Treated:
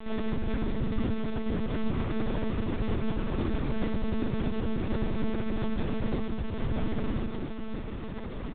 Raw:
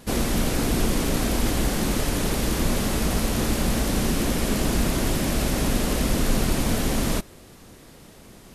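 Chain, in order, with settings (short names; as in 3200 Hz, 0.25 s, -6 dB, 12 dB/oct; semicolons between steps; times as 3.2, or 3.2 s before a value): LPF 1500 Hz 6 dB/oct; bell 620 Hz -2.5 dB 0.43 oct; negative-ratio compressor -26 dBFS, ratio -0.5; limiter -30 dBFS, peak gain reduction 18 dB; sample-and-hold 11×; flange 0.26 Hz, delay 4.5 ms, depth 6.1 ms, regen -87%; echo 0.243 s -13.5 dB; reverb RT60 0.95 s, pre-delay 3 ms, DRR 0.5 dB; monotone LPC vocoder at 8 kHz 220 Hz; gain +7.5 dB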